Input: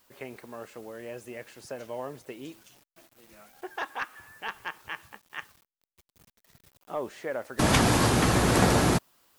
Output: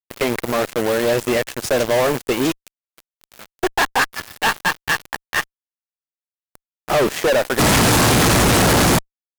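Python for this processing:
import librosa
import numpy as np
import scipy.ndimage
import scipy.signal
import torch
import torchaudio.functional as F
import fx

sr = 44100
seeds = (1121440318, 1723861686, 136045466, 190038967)

y = fx.transient(x, sr, attack_db=-1, sustain_db=-7, at=(2.47, 4.13))
y = fx.fuzz(y, sr, gain_db=45.0, gate_db=-46.0)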